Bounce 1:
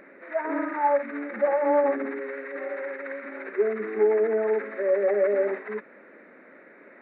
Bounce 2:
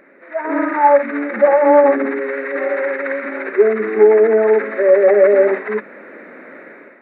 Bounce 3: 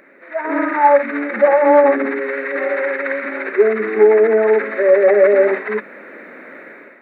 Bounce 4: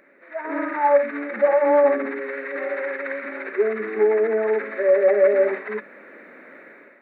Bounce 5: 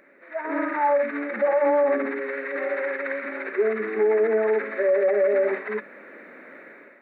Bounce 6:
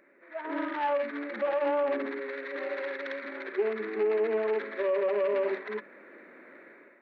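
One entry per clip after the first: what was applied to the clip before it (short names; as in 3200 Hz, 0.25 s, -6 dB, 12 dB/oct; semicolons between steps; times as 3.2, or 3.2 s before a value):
notches 50/100/150/200 Hz; AGC gain up to 12.5 dB; gain +1 dB
high shelf 2400 Hz +8 dB; gain -1 dB
resonator 570 Hz, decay 0.5 s, mix 60%
limiter -14 dBFS, peak gain reduction 7 dB
self-modulated delay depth 0.1 ms; small resonant body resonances 350/1000 Hz, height 6 dB; gain -7.5 dB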